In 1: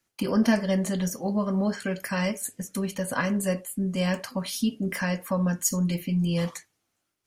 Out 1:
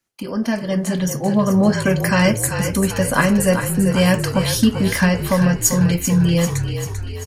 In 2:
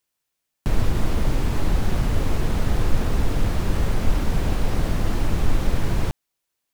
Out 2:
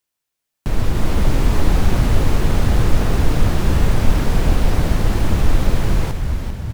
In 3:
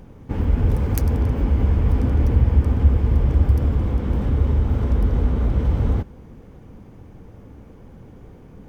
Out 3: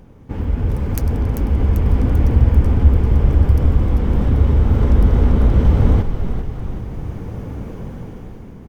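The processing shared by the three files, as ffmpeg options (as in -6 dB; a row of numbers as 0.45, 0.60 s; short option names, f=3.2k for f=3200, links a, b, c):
-filter_complex "[0:a]dynaudnorm=f=250:g=7:m=14dB,asplit=2[a][b];[b]asplit=7[c][d][e][f][g][h][i];[c]adelay=392,afreqshift=-40,volume=-8dB[j];[d]adelay=784,afreqshift=-80,volume=-12.7dB[k];[e]adelay=1176,afreqshift=-120,volume=-17.5dB[l];[f]adelay=1568,afreqshift=-160,volume=-22.2dB[m];[g]adelay=1960,afreqshift=-200,volume=-26.9dB[n];[h]adelay=2352,afreqshift=-240,volume=-31.7dB[o];[i]adelay=2744,afreqshift=-280,volume=-36.4dB[p];[j][k][l][m][n][o][p]amix=inputs=7:normalize=0[q];[a][q]amix=inputs=2:normalize=0,volume=-1dB"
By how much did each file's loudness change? +9.5, +6.0, +3.5 LU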